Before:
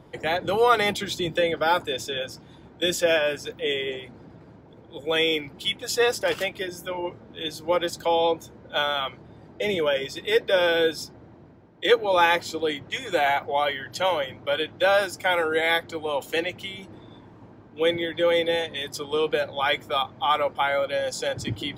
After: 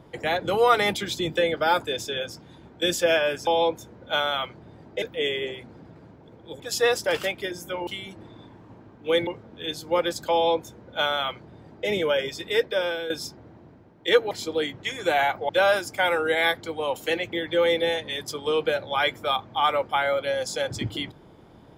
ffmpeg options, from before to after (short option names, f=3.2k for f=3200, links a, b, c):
-filter_complex "[0:a]asplit=10[a][b][c][d][e][f][g][h][i][j];[a]atrim=end=3.472[k];[b]atrim=start=8.098:end=9.652[l];[c]atrim=start=3.468:end=5.052[m];[d]atrim=start=5.768:end=7.042[n];[e]atrim=start=16.588:end=17.992[o];[f]atrim=start=7.038:end=10.87,asetpts=PTS-STARTPTS,afade=t=out:st=3.202:d=0.63:silence=0.223872[p];[g]atrim=start=10.87:end=12.082,asetpts=PTS-STARTPTS,afade=t=in:d=0.004:c=hsin:silence=0.223872[q];[h]atrim=start=12.378:end=13.562[r];[i]atrim=start=14.748:end=16.592[s];[j]atrim=start=17.988[t];[k][l]acrossfade=d=0.004:c1=hsin:c2=hsin[u];[u][m]acrossfade=d=0.004:c1=hsin:c2=hsin[v];[v][n]acrossfade=d=0.004:c1=hsin:c2=hsin[w];[w][o]acrossfade=d=0.004:c1=hsin:c2=hsin[x];[p][q]concat=n=2:v=0:a=1[y];[x][y]acrossfade=d=0.004:c1=hsin:c2=hsin[z];[z][r]acrossfade=d=0.004:c1=hsin:c2=hsin[aa];[aa][s]acrossfade=d=0.004:c1=hsin:c2=hsin[ab];[ab][t]acrossfade=d=0.004:c1=hsin:c2=hsin"